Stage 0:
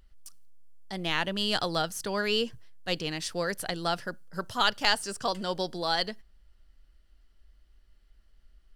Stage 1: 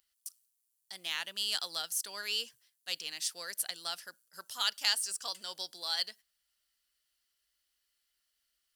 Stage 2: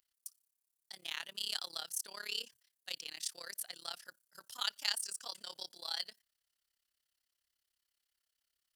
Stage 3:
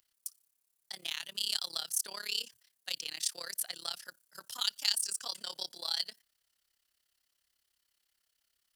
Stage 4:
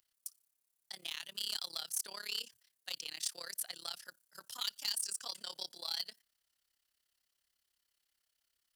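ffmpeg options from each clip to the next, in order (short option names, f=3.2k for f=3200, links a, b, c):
-af "aderivative,volume=3dB"
-af "tremolo=f=34:d=0.919,volume=-1.5dB"
-filter_complex "[0:a]acrossover=split=180|3000[a][b][c];[b]acompressor=threshold=-49dB:ratio=6[d];[a][d][c]amix=inputs=3:normalize=0,volume=6.5dB"
-af "asoftclip=type=hard:threshold=-24dB,volume=-3.5dB"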